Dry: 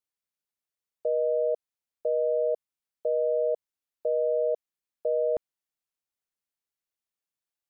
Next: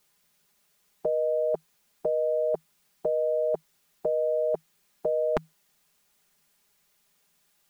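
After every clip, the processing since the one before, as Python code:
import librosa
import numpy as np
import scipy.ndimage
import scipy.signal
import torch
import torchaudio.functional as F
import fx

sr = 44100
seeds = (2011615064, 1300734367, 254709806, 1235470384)

y = fx.peak_eq(x, sr, hz=160.0, db=9.0, octaves=0.21)
y = y + 0.65 * np.pad(y, (int(4.9 * sr / 1000.0), 0))[:len(y)]
y = fx.spectral_comp(y, sr, ratio=2.0)
y = F.gain(torch.from_numpy(y), 7.0).numpy()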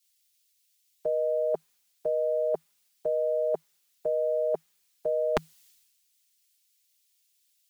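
y = fx.low_shelf(x, sr, hz=200.0, db=-8.5)
y = fx.band_widen(y, sr, depth_pct=100)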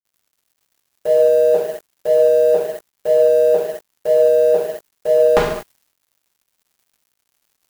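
y = fx.dmg_noise_colour(x, sr, seeds[0], colour='blue', level_db=-57.0)
y = fx.rev_gated(y, sr, seeds[1], gate_ms=270, shape='falling', drr_db=-8.0)
y = np.sign(y) * np.maximum(np.abs(y) - 10.0 ** (-40.5 / 20.0), 0.0)
y = F.gain(torch.from_numpy(y), 6.0).numpy()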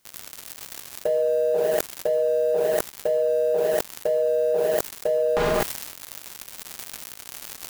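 y = fx.env_flatten(x, sr, amount_pct=100)
y = F.gain(torch.from_numpy(y), -10.5).numpy()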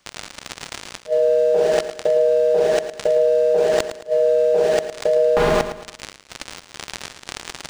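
y = fx.gate_flip(x, sr, shuts_db=-9.0, range_db=-39)
y = fx.echo_feedback(y, sr, ms=110, feedback_pct=36, wet_db=-11.0)
y = np.interp(np.arange(len(y)), np.arange(len(y))[::3], y[::3])
y = F.gain(torch.from_numpy(y), 5.0).numpy()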